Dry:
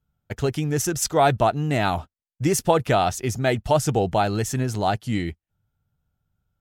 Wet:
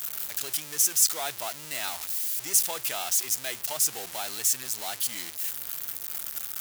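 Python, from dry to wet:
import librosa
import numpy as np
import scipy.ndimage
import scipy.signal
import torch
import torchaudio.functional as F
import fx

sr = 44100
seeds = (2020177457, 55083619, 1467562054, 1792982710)

y = x + 0.5 * 10.0 ** (-20.5 / 20.0) * np.sign(x)
y = np.diff(y, prepend=0.0)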